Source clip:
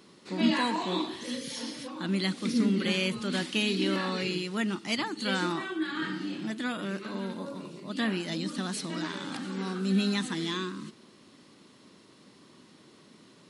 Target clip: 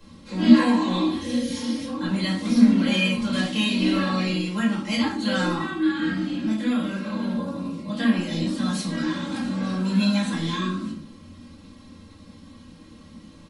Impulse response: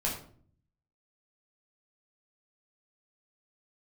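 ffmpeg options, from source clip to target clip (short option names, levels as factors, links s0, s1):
-filter_complex "[0:a]aecho=1:1:3.7:0.93,acrossover=split=100|2600[s0][s1][s2];[s0]aeval=exprs='0.00944*sin(PI/2*8.91*val(0)/0.00944)':c=same[s3];[s3][s1][s2]amix=inputs=3:normalize=0[s4];[1:a]atrim=start_sample=2205[s5];[s4][s5]afir=irnorm=-1:irlink=0,volume=0.631"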